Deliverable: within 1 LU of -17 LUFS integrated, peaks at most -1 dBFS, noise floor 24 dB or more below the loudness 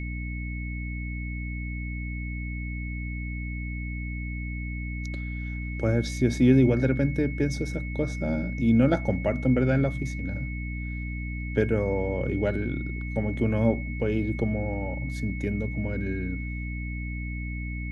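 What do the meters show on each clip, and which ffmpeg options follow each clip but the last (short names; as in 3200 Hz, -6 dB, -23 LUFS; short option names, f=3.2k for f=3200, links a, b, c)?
hum 60 Hz; harmonics up to 300 Hz; hum level -30 dBFS; steady tone 2200 Hz; tone level -39 dBFS; loudness -28.0 LUFS; peak -8.5 dBFS; loudness target -17.0 LUFS
-> -af "bandreject=f=60:t=h:w=4,bandreject=f=120:t=h:w=4,bandreject=f=180:t=h:w=4,bandreject=f=240:t=h:w=4,bandreject=f=300:t=h:w=4"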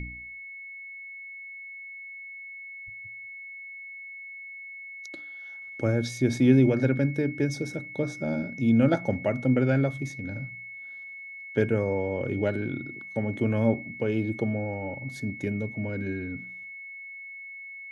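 hum none; steady tone 2200 Hz; tone level -39 dBFS
-> -af "bandreject=f=2.2k:w=30"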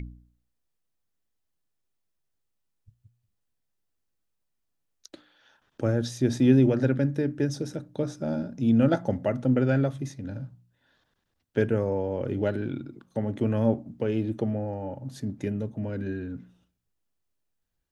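steady tone none; loudness -27.0 LUFS; peak -8.0 dBFS; loudness target -17.0 LUFS
-> -af "volume=10dB,alimiter=limit=-1dB:level=0:latency=1"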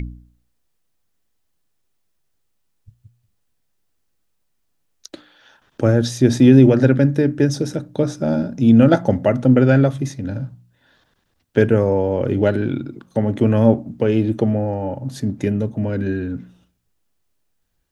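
loudness -17.5 LUFS; peak -1.0 dBFS; noise floor -68 dBFS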